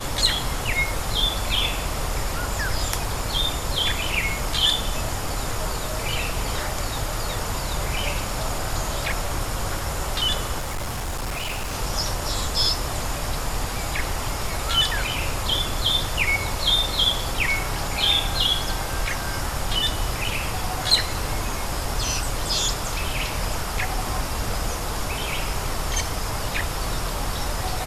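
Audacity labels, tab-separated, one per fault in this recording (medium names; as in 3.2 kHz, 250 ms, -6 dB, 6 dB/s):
10.580000	11.750000	clipped -24.5 dBFS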